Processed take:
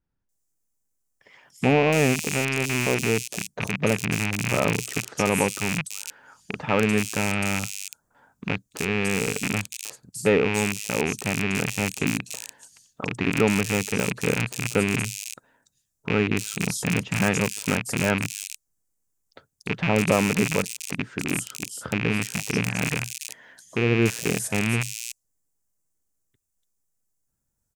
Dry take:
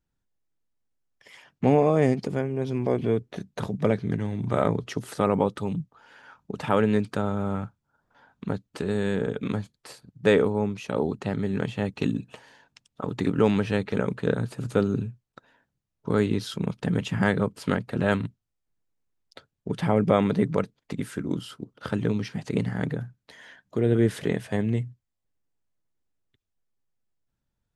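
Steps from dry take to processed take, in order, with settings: rattling part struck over -29 dBFS, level -11 dBFS; resonant high shelf 5000 Hz +12.5 dB, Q 1.5; bands offset in time lows, highs 0.29 s, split 3700 Hz

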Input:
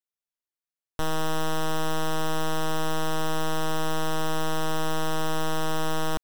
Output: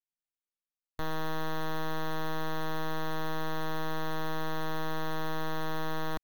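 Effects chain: switching dead time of 0.065 ms; formant shift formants +2 st; gain -6.5 dB

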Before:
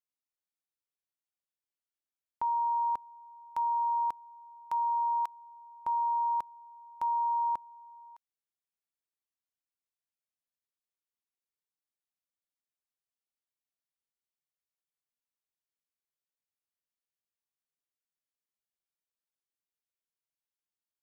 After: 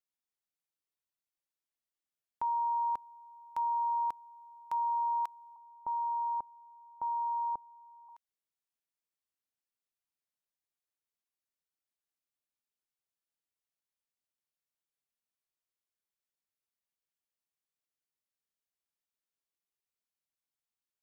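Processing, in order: 5.56–8.09 LPF 1000 Hz 24 dB/oct; gain -2 dB

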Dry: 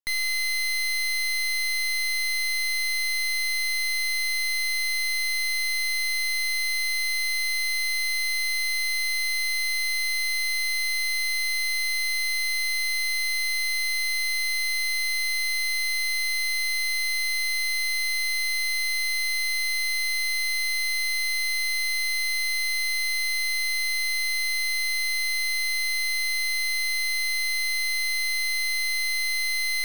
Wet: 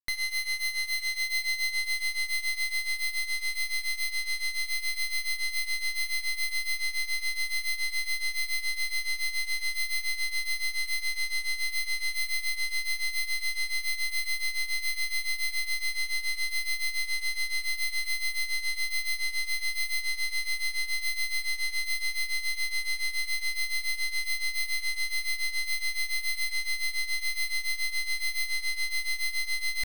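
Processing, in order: diffused feedback echo 0.937 s, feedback 63%, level -9 dB; grains 0.19 s, grains 7.1/s, pitch spread up and down by 0 st; gain -1.5 dB

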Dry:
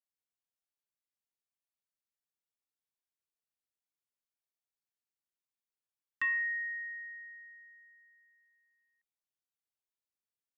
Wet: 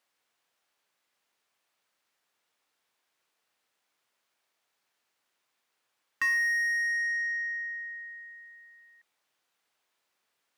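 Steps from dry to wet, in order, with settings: overdrive pedal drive 25 dB, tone 2100 Hz, clips at -25.5 dBFS; gain +5 dB

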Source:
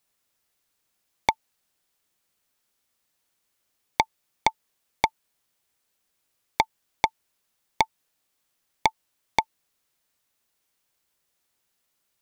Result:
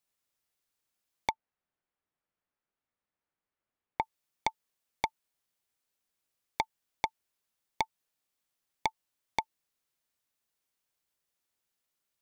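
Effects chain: 1.31–4.02 LPF 1900 Hz 12 dB/oct; gain -9 dB

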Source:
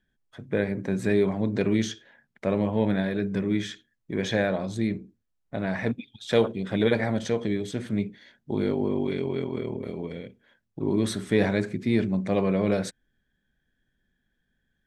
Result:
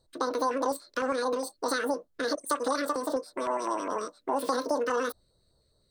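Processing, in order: harmonic-percussive split harmonic +7 dB; compressor 4:1, threshold -25 dBFS, peak gain reduction 13 dB; wide varispeed 2.52×; LFO notch square 4.9 Hz 820–2400 Hz

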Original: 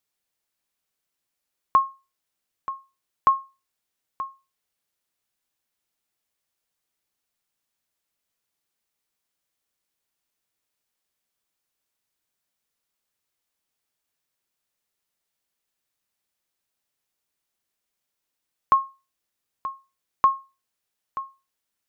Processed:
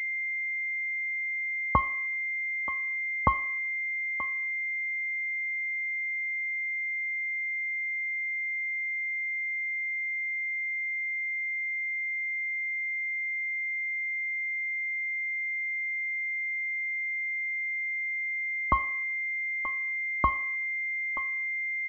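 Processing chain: comb 3.4 ms, depth 89%; Schroeder reverb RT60 0.63 s, combs from 28 ms, DRR 14.5 dB; pulse-width modulation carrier 2100 Hz; gain +1 dB

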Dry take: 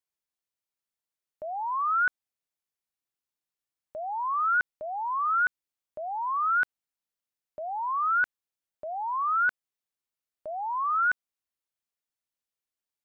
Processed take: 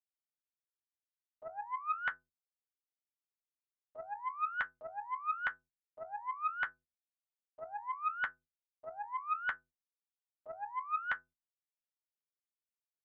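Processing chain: metallic resonator 75 Hz, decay 0.52 s, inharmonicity 0.03; gate -58 dBFS, range -11 dB; Doppler distortion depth 0.42 ms

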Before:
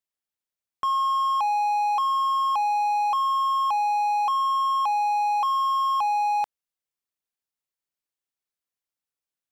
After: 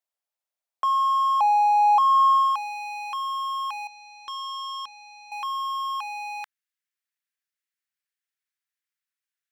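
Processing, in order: high-pass sweep 640 Hz -> 1700 Hz, 1.73–2.77; 3.87–5.32 power-law curve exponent 3; gain -1.5 dB

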